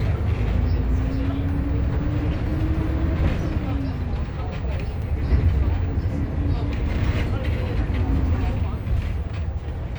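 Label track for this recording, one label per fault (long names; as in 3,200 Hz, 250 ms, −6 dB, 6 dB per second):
5.020000	5.020000	drop-out 4.2 ms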